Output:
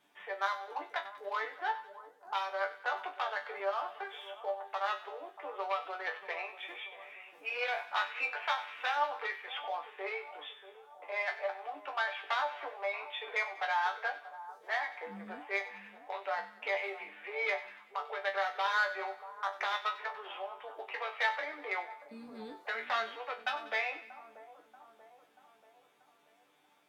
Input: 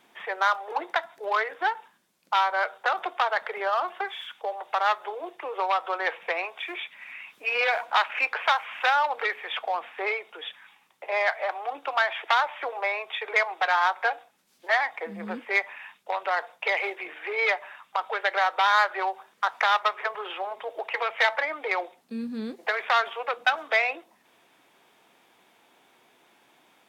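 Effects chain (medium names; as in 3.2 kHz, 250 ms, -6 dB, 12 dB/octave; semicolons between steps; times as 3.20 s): chord resonator G2 fifth, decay 0.21 s; two-band feedback delay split 1.2 kHz, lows 635 ms, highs 95 ms, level -14 dB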